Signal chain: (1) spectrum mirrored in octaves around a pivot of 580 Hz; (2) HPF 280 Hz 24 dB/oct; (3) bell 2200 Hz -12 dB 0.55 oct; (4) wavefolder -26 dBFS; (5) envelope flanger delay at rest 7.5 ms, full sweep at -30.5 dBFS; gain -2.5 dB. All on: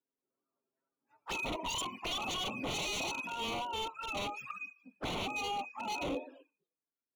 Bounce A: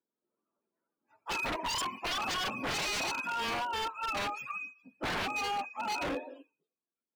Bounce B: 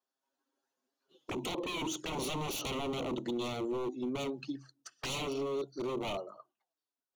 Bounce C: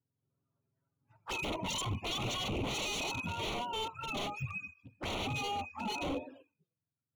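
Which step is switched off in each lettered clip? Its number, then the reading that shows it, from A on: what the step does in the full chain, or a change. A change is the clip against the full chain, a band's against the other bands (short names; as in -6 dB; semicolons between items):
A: 5, 2 kHz band +3.5 dB; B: 1, 250 Hz band +8.5 dB; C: 2, 125 Hz band +8.5 dB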